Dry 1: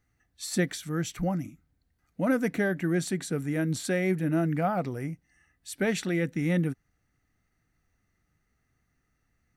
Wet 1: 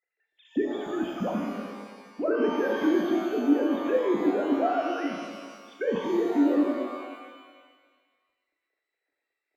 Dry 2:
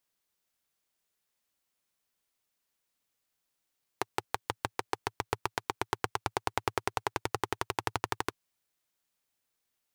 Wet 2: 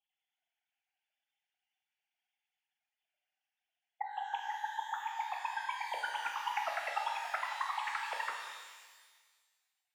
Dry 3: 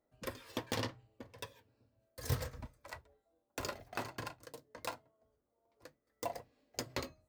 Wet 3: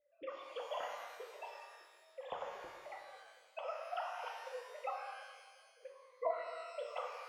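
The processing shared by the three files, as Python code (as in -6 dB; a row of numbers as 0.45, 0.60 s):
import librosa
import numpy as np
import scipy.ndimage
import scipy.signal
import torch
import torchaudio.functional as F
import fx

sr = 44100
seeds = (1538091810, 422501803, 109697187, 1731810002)

y = fx.sine_speech(x, sr)
y = fx.env_phaser(y, sr, low_hz=190.0, high_hz=2100.0, full_db=-25.5)
y = fx.rev_shimmer(y, sr, seeds[0], rt60_s=1.5, semitones=12, shimmer_db=-8, drr_db=0.0)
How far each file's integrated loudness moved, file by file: +2.0, -2.0, -1.5 LU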